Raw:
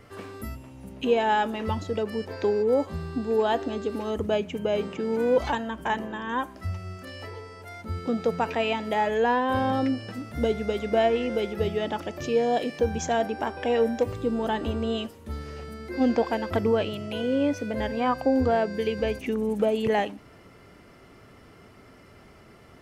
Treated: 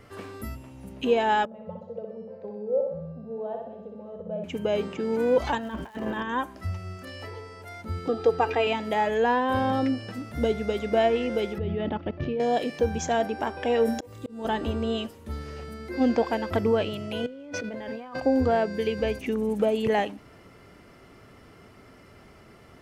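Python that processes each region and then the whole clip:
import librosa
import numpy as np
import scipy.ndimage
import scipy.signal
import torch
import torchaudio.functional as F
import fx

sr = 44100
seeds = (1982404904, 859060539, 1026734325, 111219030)

y = fx.chain(x, sr, fx.double_bandpass(hz=310.0, octaves=1.6),
    fx.echo_feedback(ms=62, feedback_pct=57, wet_db=-4.0), at=(1.45, 4.44))
y = fx.lowpass(y, sr, hz=5400.0, slope=12, at=(5.58, 6.22), fade=0.02)
y = fx.over_compress(y, sr, threshold_db=-35.0, ratio=-0.5, at=(5.58, 6.22), fade=0.02)
y = fx.dmg_crackle(y, sr, seeds[0], per_s=410.0, level_db=-46.0, at=(5.58, 6.22), fade=0.02)
y = fx.chain(y, sr, fx.high_shelf(hz=4800.0, db=-9.0),
    fx.comb(ms=2.5, depth=0.94), at=(8.08, 8.67))
y = fx.chain(y, sr, fx.lowpass(hz=3500.0, slope=24),
    fx.low_shelf(hz=320.0, db=12.0),
    fx.level_steps(step_db=14), at=(11.58, 12.4))
y = fx.chain(y, sr, fx.high_shelf(hz=6000.0, db=11.0),
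    fx.doubler(ms=27.0, db=-5),
    fx.auto_swell(attack_ms=514.0), at=(13.85, 14.45))
y = fx.chain(y, sr, fx.bandpass_edges(low_hz=170.0, high_hz=5600.0),
    fx.over_compress(threshold_db=-37.0, ratio=-1.0),
    fx.backlash(play_db=-58.5), at=(17.26, 18.22))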